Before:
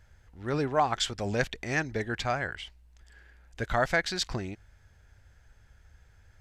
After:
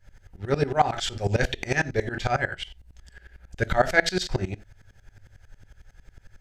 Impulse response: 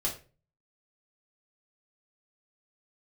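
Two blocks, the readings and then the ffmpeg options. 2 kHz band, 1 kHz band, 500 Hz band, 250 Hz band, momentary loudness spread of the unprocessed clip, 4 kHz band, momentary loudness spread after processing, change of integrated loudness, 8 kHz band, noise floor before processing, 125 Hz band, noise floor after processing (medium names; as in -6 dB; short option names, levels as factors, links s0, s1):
+5.0 dB, +4.0 dB, +5.0 dB, +3.0 dB, 14 LU, +2.5 dB, 14 LU, +4.5 dB, +2.0 dB, -60 dBFS, +6.5 dB, -59 dBFS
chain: -filter_complex "[0:a]bandreject=f=1100:w=5.7,asplit=2[s0][s1];[1:a]atrim=start_sample=2205,afade=t=out:st=0.15:d=0.01,atrim=end_sample=7056[s2];[s1][s2]afir=irnorm=-1:irlink=0,volume=0.447[s3];[s0][s3]amix=inputs=2:normalize=0,aeval=exprs='val(0)*pow(10,-20*if(lt(mod(-11*n/s,1),2*abs(-11)/1000),1-mod(-11*n/s,1)/(2*abs(-11)/1000),(mod(-11*n/s,1)-2*abs(-11)/1000)/(1-2*abs(-11)/1000))/20)':c=same,volume=2.37"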